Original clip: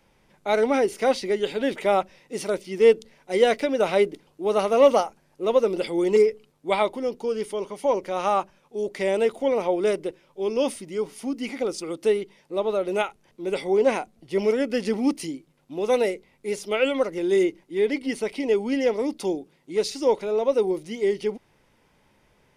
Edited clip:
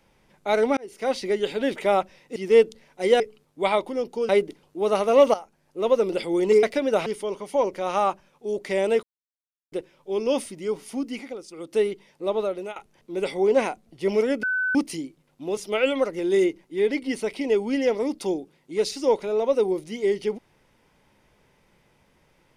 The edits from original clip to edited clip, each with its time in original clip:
0:00.77–0:01.26: fade in
0:02.36–0:02.66: remove
0:03.50–0:03.93: swap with 0:06.27–0:07.36
0:04.98–0:05.72: fade in equal-power, from −13 dB
0:09.33–0:10.02: silence
0:11.33–0:12.14: duck −11 dB, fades 0.34 s
0:12.69–0:13.06: fade out, to −18.5 dB
0:14.73–0:15.05: beep over 1,510 Hz −21.5 dBFS
0:15.87–0:16.56: remove

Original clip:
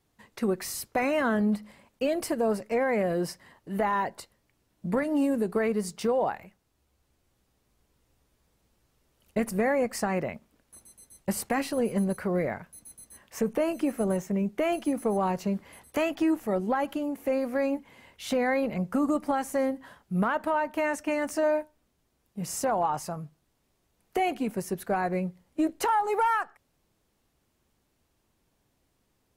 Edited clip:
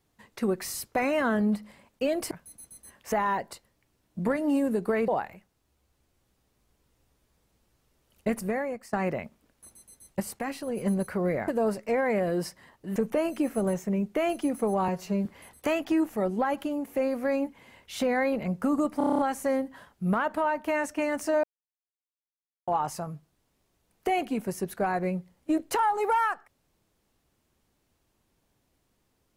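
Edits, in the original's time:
0:02.31–0:03.79: swap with 0:12.58–0:13.39
0:05.75–0:06.18: remove
0:09.37–0:10.03: fade out, to −19 dB
0:11.30–0:11.87: clip gain −5.5 dB
0:15.31–0:15.56: time-stretch 1.5×
0:19.28: stutter 0.03 s, 8 plays
0:21.53–0:22.77: silence

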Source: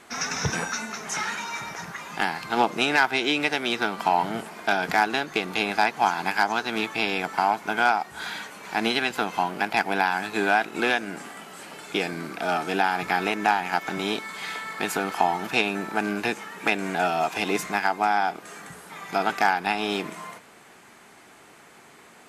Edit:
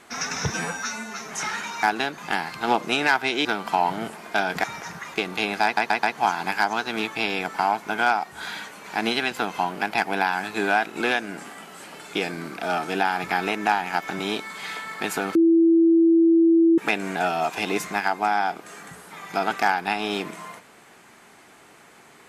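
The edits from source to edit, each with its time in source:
0:00.50–0:01.02: time-stretch 1.5×
0:01.57–0:02.07: swap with 0:04.97–0:05.32
0:03.34–0:03.78: remove
0:05.82: stutter 0.13 s, 4 plays
0:15.14–0:16.57: beep over 331 Hz −13 dBFS

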